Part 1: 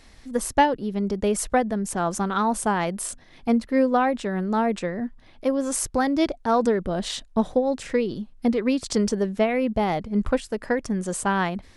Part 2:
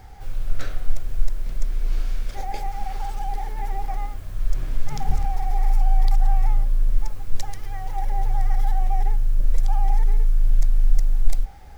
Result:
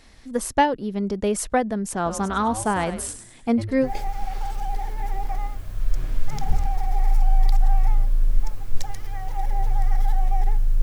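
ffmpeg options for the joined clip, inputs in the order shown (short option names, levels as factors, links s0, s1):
-filter_complex "[0:a]asettb=1/sr,asplit=3[s0][s1][s2];[s0]atrim=end=1.944[s3];[s1]atrim=start=1.94:end=3.91,asetpts=PTS-STARTPTS,afade=t=in:d=0.004:c=qsin,afade=t=out:st=1.966:d=0.004:c=qsin,asplit=5[s4][s5][s6][s7][s8];[s5]adelay=101,afreqshift=-130,volume=0.299[s9];[s6]adelay=202,afreqshift=-260,volume=0.119[s10];[s7]adelay=303,afreqshift=-390,volume=0.0479[s11];[s8]adelay=404,afreqshift=-520,volume=0.0191[s12];[s4][s9][s10][s11][s12]amix=inputs=5:normalize=0,atrim=end_sample=86877[s13];[s2]atrim=start=3.906[s14];[s3][s13]acrossfade=d=0.004:c1=hsin:c2=qsin[s15];[s15][s14]acrossfade=d=0.004:c1=qsin:c2=hsin,apad=whole_dur=10.82,atrim=end=10.82,atrim=end=3.91,asetpts=PTS-STARTPTS[s16];[1:a]atrim=start=2.4:end=9.41,asetpts=PTS-STARTPTS[s17];[s16][s17]acrossfade=d=0.1:c1=tri:c2=tri"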